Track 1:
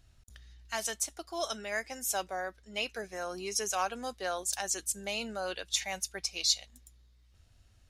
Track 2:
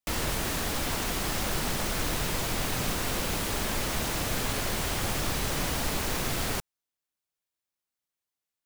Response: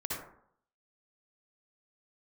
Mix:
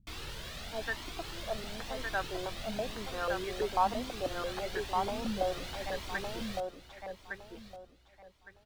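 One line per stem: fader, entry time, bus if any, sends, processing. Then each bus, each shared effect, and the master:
−3.0 dB, 0.00 s, no send, echo send −4 dB, low-pass on a step sequencer 6.1 Hz 210–1,700 Hz
−10.5 dB, 0.00 s, no send, echo send −14.5 dB, parametric band 3,700 Hz +10 dB 1.3 octaves; flanger whose copies keep moving one way rising 1 Hz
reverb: not used
echo: repeating echo 1,161 ms, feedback 23%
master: high-shelf EQ 4,300 Hz −7 dB

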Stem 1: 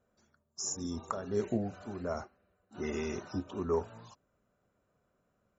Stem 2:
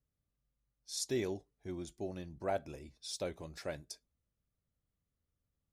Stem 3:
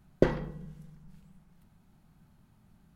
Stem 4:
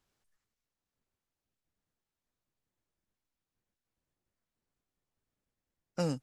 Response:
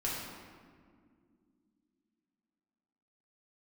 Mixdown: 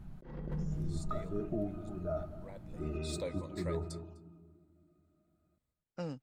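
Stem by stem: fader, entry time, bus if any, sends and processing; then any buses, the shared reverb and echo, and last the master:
+2.0 dB, 0.00 s, send −15.5 dB, echo send −15 dB, resonances in every octave D#, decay 0.12 s
0:02.54 −21.5 dB → 0:02.96 −8.5 dB, 0.00 s, no send, echo send −23 dB, EQ curve with evenly spaced ripples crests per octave 1, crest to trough 13 dB
+0.5 dB, 0.00 s, no send, echo send −21 dB, spectral tilt −2 dB per octave
−13.0 dB, 0.00 s, no send, no echo send, low-pass filter 4,100 Hz 12 dB per octave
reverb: on, RT60 2.2 s, pre-delay 4 ms
echo: single-tap delay 252 ms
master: compressor whose output falls as the input rises −38 dBFS, ratio −1

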